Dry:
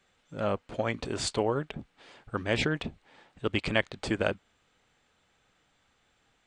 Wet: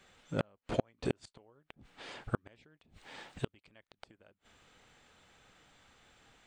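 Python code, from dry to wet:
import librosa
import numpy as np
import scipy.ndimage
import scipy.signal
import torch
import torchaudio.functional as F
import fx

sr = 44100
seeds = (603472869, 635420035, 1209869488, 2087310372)

y = fx.high_shelf(x, sr, hz=2900.0, db=6.5, at=(2.77, 3.53))
y = fx.gate_flip(y, sr, shuts_db=-21.0, range_db=-41)
y = y * 10.0 ** (6.0 / 20.0)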